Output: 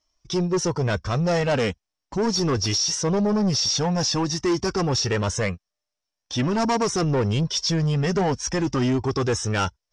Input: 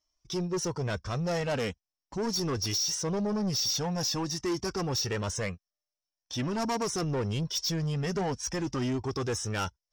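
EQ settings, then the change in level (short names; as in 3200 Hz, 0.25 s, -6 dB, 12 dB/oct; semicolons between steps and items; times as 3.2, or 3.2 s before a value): LPF 9100 Hz 24 dB/oct; high shelf 5800 Hz -5 dB; +8.5 dB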